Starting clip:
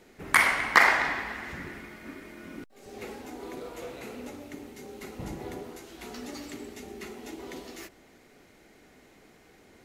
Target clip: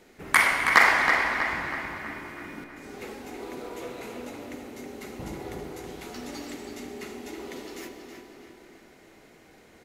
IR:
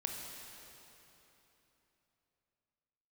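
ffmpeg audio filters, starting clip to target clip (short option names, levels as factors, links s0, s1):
-filter_complex "[0:a]asplit=2[s0][s1];[s1]adelay=322,lowpass=f=4300:p=1,volume=0.531,asplit=2[s2][s3];[s3]adelay=322,lowpass=f=4300:p=1,volume=0.51,asplit=2[s4][s5];[s5]adelay=322,lowpass=f=4300:p=1,volume=0.51,asplit=2[s6][s7];[s7]adelay=322,lowpass=f=4300:p=1,volume=0.51,asplit=2[s8][s9];[s9]adelay=322,lowpass=f=4300:p=1,volume=0.51,asplit=2[s10][s11];[s11]adelay=322,lowpass=f=4300:p=1,volume=0.51[s12];[s0][s2][s4][s6][s8][s10][s12]amix=inputs=7:normalize=0,asplit=2[s13][s14];[1:a]atrim=start_sample=2205,lowshelf=f=190:g=-7.5[s15];[s14][s15]afir=irnorm=-1:irlink=0,volume=0.841[s16];[s13][s16]amix=inputs=2:normalize=0,volume=0.668"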